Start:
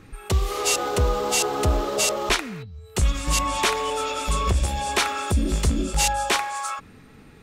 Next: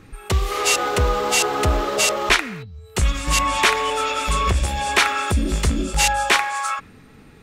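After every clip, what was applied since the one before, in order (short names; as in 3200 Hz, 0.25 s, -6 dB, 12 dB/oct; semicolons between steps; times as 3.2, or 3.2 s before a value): dynamic EQ 1900 Hz, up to +7 dB, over -39 dBFS, Q 0.88; gain +1.5 dB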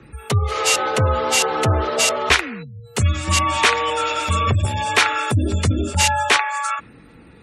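frequency shift +31 Hz; spectral gate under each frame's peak -30 dB strong; gain +1 dB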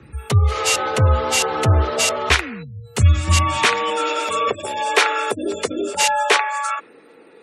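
high-pass sweep 68 Hz -> 430 Hz, 3.3–4.26; gain -1 dB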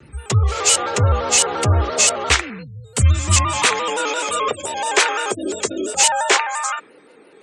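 synth low-pass 7800 Hz, resonance Q 3.2; shaped vibrato square 5.8 Hz, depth 100 cents; gain -1 dB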